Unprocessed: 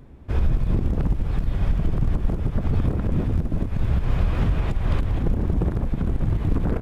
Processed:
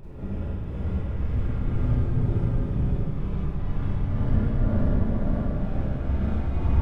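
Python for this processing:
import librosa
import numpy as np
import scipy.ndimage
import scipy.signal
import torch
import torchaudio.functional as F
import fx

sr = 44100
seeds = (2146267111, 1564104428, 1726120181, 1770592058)

p1 = fx.lowpass(x, sr, hz=3200.0, slope=6)
p2 = fx.paulstretch(p1, sr, seeds[0], factor=23.0, window_s=0.1, from_s=2.38)
p3 = fx.volume_shaper(p2, sr, bpm=123, per_beat=1, depth_db=-9, release_ms=192.0, shape='slow start')
p4 = p3 + fx.echo_single(p3, sr, ms=640, db=-4.0, dry=0)
p5 = fx.rev_schroeder(p4, sr, rt60_s=1.7, comb_ms=32, drr_db=-5.5)
y = p5 * 10.0 ** (-7.5 / 20.0)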